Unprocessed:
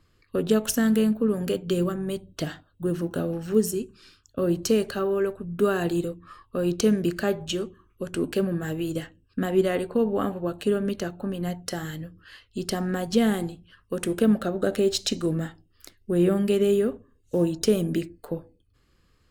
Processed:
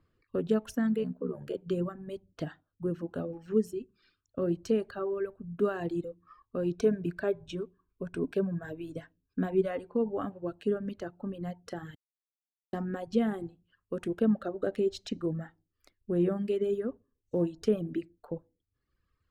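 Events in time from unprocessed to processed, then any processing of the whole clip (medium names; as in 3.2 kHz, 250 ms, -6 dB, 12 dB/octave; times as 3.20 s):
1.03–1.55 s: ring modulator 35 Hz
6.74–9.71 s: rippled EQ curve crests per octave 1.6, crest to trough 8 dB
11.95–12.73 s: mute
whole clip: reverb removal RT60 1.6 s; low-pass 1.2 kHz 6 dB/octave; bass shelf 68 Hz -6 dB; trim -4.5 dB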